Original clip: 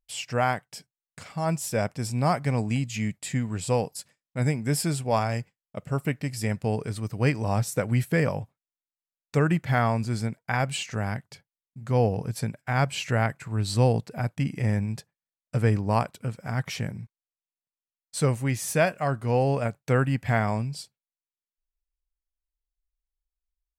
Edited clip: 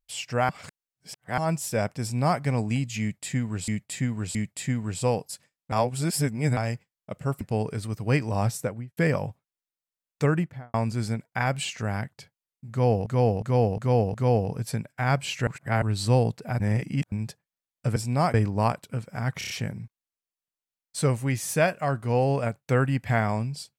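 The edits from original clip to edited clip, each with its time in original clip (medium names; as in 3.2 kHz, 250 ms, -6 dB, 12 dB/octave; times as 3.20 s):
0.49–1.38 s: reverse
2.02–2.40 s: copy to 15.65 s
3.01–3.68 s: loop, 3 plays
4.38–5.23 s: reverse
6.07–6.54 s: delete
7.63–8.10 s: studio fade out
9.37–9.87 s: studio fade out
11.83–12.19 s: loop, 5 plays
13.16–13.51 s: reverse
14.29–14.81 s: reverse
16.69 s: stutter 0.03 s, 5 plays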